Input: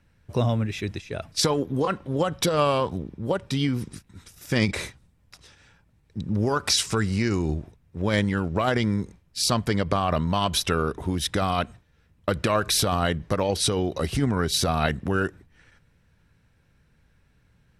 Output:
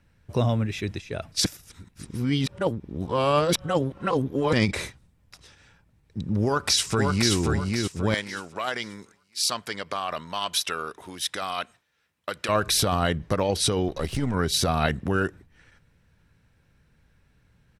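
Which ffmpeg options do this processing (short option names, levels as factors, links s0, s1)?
-filter_complex "[0:a]asplit=2[s0][s1];[s1]afade=t=in:st=6.45:d=0.01,afade=t=out:st=7.34:d=0.01,aecho=0:1:530|1060|1590|2120|2650:0.707946|0.247781|0.0867234|0.0303532|0.0106236[s2];[s0][s2]amix=inputs=2:normalize=0,asettb=1/sr,asplit=3[s3][s4][s5];[s3]atrim=end=8.144[s6];[s4]atrim=start=8.14:end=12.49,asetpts=PTS-STARTPTS,afade=t=in:d=0.004:c=qsin,afade=t=out:st=4.346:d=0.004:c=qsin,highpass=f=1300:p=1[s7];[s5]atrim=start=12.486[s8];[s6][s7]acrossfade=d=0.004:c1=hsin:c2=qsin[s9];[s9][s8]acrossfade=d=0.004:c1=qsin:c2=hsin,asettb=1/sr,asplit=3[s10][s11][s12];[s10]atrim=end=13.884[s13];[s11]atrim=start=13.88:end=14.34,asetpts=PTS-STARTPTS,afade=t=in:d=0.004:c=qsin,afade=t=out:st=0.456:d=0.004:c=qsin,aeval=exprs='if(lt(val(0),0),0.447*val(0),val(0))':c=same[s14];[s12]atrim=start=14.336[s15];[s13][s14]acrossfade=d=0.004:c1=hsin:c2=qsin[s16];[s16][s15]acrossfade=d=0.004:c1=qsin:c2=hsin,asplit=3[s17][s18][s19];[s17]atrim=end=1.452[s20];[s18]atrim=start=1.448:end=4.532,asetpts=PTS-STARTPTS,areverse[s21];[s19]atrim=start=4.528[s22];[s20][s21]acrossfade=d=0.004:c1=hsin:c2=hsin[s23];[s23][s22]acrossfade=d=0.004:c1=hsin:c2=hsin"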